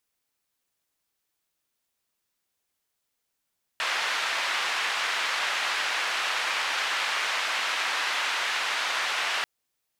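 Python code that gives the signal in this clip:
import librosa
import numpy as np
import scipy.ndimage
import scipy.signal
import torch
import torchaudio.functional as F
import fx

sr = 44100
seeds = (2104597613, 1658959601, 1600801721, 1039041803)

y = fx.band_noise(sr, seeds[0], length_s=5.64, low_hz=970.0, high_hz=2600.0, level_db=-28.0)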